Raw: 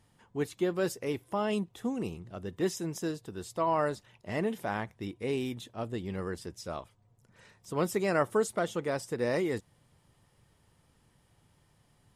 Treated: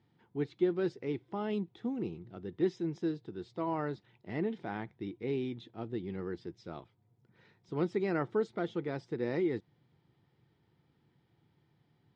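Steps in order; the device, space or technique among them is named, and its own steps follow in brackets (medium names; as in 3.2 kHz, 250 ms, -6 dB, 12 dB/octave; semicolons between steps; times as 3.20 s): guitar cabinet (cabinet simulation 110–3900 Hz, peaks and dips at 140 Hz +4 dB, 340 Hz +6 dB, 590 Hz -9 dB, 1.1 kHz -8 dB, 1.7 kHz -4 dB, 2.8 kHz -7 dB); trim -3 dB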